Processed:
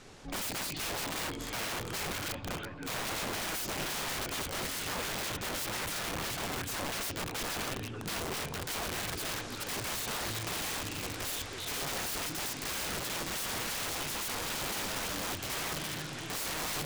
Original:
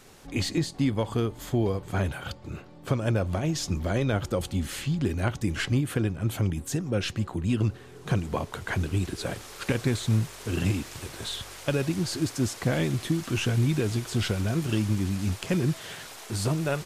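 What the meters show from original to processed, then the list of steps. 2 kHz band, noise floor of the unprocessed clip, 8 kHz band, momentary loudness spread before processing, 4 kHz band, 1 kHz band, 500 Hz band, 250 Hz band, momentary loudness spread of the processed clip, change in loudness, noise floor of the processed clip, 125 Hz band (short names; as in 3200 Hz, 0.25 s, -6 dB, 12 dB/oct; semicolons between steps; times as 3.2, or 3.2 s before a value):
-0.5 dB, -47 dBFS, +2.5 dB, 8 LU, +1.0 dB, 0.0 dB, -9.5 dB, -14.5 dB, 3 LU, -6.0 dB, -41 dBFS, -18.0 dB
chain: LPF 7300 Hz 12 dB/oct; delay with a stepping band-pass 0.332 s, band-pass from 2900 Hz, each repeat -0.7 oct, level -6 dB; FDN reverb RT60 2 s, low-frequency decay 1.25×, high-frequency decay 0.4×, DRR 16.5 dB; wrapped overs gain 31 dB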